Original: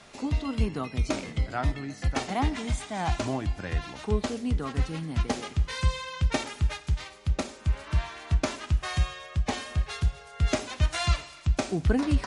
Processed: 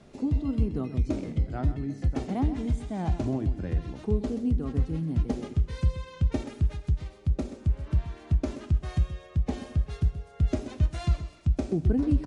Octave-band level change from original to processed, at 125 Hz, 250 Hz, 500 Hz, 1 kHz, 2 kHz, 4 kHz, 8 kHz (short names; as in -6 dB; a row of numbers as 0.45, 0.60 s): +1.5 dB, +2.5 dB, -2.0 dB, -8.5 dB, -13.0 dB, -13.5 dB, under -10 dB